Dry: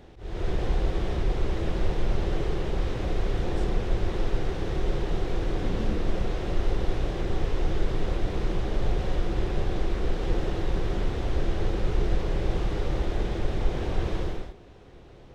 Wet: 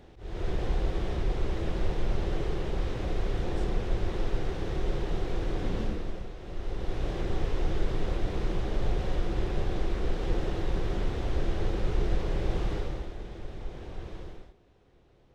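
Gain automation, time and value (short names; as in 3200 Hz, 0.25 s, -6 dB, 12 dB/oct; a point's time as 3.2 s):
5.8 s -3 dB
6.35 s -13.5 dB
7.1 s -2.5 dB
12.74 s -2.5 dB
13.15 s -12.5 dB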